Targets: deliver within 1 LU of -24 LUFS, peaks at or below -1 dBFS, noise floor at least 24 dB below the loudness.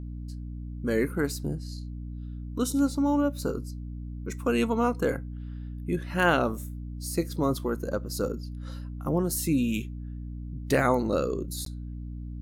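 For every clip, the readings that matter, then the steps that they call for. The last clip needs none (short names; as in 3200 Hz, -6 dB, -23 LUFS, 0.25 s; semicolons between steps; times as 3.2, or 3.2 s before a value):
dropouts 1; longest dropout 13 ms; hum 60 Hz; harmonics up to 300 Hz; hum level -34 dBFS; loudness -29.5 LUFS; peak -9.5 dBFS; loudness target -24.0 LUFS
-> interpolate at 11.65, 13 ms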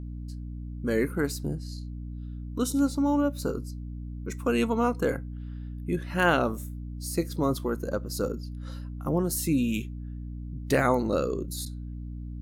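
dropouts 0; hum 60 Hz; harmonics up to 300 Hz; hum level -34 dBFS
-> de-hum 60 Hz, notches 5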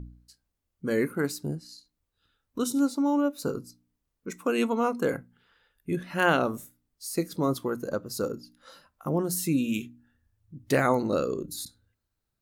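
hum none; loudness -28.5 LUFS; peak -9.5 dBFS; loudness target -24.0 LUFS
-> gain +4.5 dB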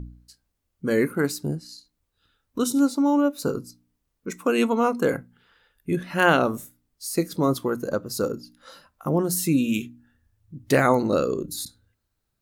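loudness -24.0 LUFS; peak -5.0 dBFS; noise floor -77 dBFS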